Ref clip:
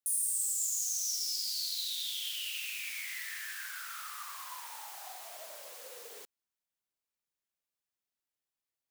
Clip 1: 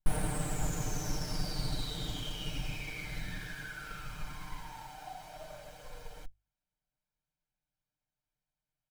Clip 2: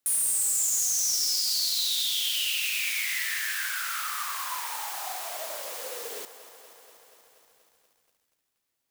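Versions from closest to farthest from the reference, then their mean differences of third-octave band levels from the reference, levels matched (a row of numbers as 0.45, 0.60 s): 2, 1; 5.0, 19.0 dB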